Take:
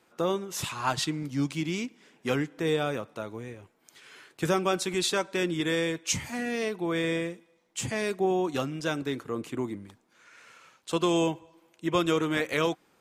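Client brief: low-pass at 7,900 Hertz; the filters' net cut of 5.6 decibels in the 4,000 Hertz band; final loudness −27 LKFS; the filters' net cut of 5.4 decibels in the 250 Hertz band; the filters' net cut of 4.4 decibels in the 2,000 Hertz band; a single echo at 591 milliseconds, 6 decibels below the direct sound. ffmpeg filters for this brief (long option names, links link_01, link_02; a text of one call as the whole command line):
ffmpeg -i in.wav -af "lowpass=7900,equalizer=frequency=250:width_type=o:gain=-8.5,equalizer=frequency=2000:width_type=o:gain=-4,equalizer=frequency=4000:width_type=o:gain=-5.5,aecho=1:1:591:0.501,volume=5.5dB" out.wav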